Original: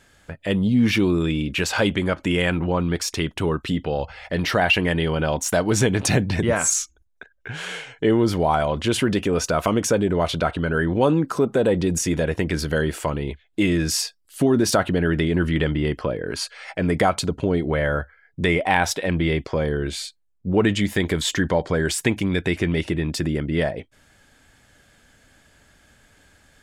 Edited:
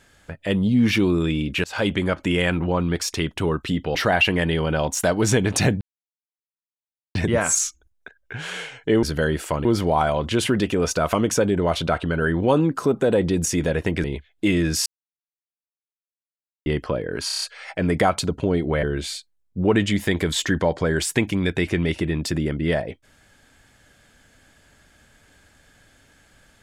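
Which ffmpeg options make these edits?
-filter_complex "[0:a]asplit=15[a][b][c][d][e][f][g][h][i][j][k][l][m][n][o];[a]atrim=end=1.64,asetpts=PTS-STARTPTS,afade=t=out:st=1.636:d=0.004:c=hsin:silence=0.0630957[p];[b]atrim=start=1.64:end=3.952,asetpts=PTS-STARTPTS,afade=t=in:d=0.36:c=qsin:silence=0.0630957[q];[c]atrim=start=4.438:end=6.3,asetpts=PTS-STARTPTS,afade=t=out:st=1.858:d=0.004:c=hsin,apad=pad_dur=1.34[r];[d]atrim=start=6.3:end=8.182,asetpts=PTS-STARTPTS,afade=t=in:d=0.004:c=hsin[s];[e]atrim=start=12.568:end=13.192[t];[f]atrim=start=8.178:end=12.572[u];[g]atrim=start=13.188:end=14.01,asetpts=PTS-STARTPTS,afade=t=out:st=0.818:d=0.004:c=hsin[v];[h]atrim=start=14.01:end=15.81,asetpts=PTS-STARTPTS,volume=0[w];[i]atrim=start=15.81:end=16.452,asetpts=PTS-STARTPTS,afade=t=in:d=0.004:c=hsin[x];[j]atrim=start=16.418:end=16.452[y];[k]atrim=start=16.418:end=16.452[z];[l]atrim=start=16.418:end=16.452[aa];[m]atrim=start=16.418:end=16.452[ab];[n]atrim=start=16.418:end=17.832[ac];[o]atrim=start=19.718[ad];[p][q]concat=n=2:v=0:a=1[ae];[r][s]concat=n=2:v=0:a=1[af];[ae][af]acrossfade=d=0.004:c1=hsin:c2=hsin[ag];[ag][t]acrossfade=d=0.004:c1=hsin:c2=hsin[ah];[ah][u]acrossfade=d=0.004:c1=hsin:c2=hsin[ai];[v][w][x]concat=n=3:v=0:a=1[aj];[ai][aj]acrossfade=d=0.004:c1=hsin:c2=hsin[ak];[ak][y]acrossfade=d=0.004:c1=hsin:c2=hsin[al];[al][z]acrossfade=d=0.004:c1=hsin:c2=hsin[am];[am][aa]acrossfade=d=0.004:c1=hsin:c2=hsin[an];[an][ab]acrossfade=d=0.004:c1=hsin:c2=hsin[ao];[ao][ac]acrossfade=d=0.004:c1=hsin:c2=hsin[ap];[ap][ad]acrossfade=d=0.004:c1=hsin:c2=hsin"

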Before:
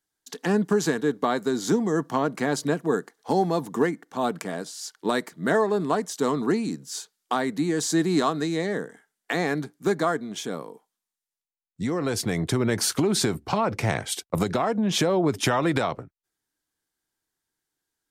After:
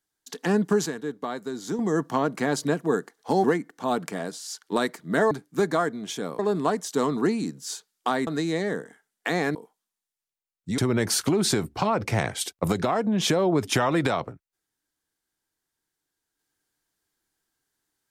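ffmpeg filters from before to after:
-filter_complex "[0:a]asplit=9[a][b][c][d][e][f][g][h][i];[a]atrim=end=0.862[j];[b]atrim=start=0.858:end=1.792,asetpts=PTS-STARTPTS,volume=-7.5dB[k];[c]atrim=start=1.788:end=3.442[l];[d]atrim=start=3.768:end=5.642[m];[e]atrim=start=9.588:end=10.672[n];[f]atrim=start=5.638:end=7.522[o];[g]atrim=start=8.308:end=9.592[p];[h]atrim=start=10.668:end=11.902[q];[i]atrim=start=12.488[r];[j][k]acrossfade=d=0.004:c1=hsin:c2=hsin[s];[s][l]acrossfade=d=0.004:c1=hsin:c2=hsin[t];[t][m]acrossfade=d=0.004:c1=hsin:c2=hsin[u];[u][n]acrossfade=d=0.004:c1=hsin:c2=hsin[v];[v][o]acrossfade=d=0.004:c1=hsin:c2=hsin[w];[w][p]acrossfade=d=0.004:c1=hsin:c2=hsin[x];[x][q]acrossfade=d=0.004:c1=hsin:c2=hsin[y];[y][r]acrossfade=d=0.004:c1=hsin:c2=hsin"

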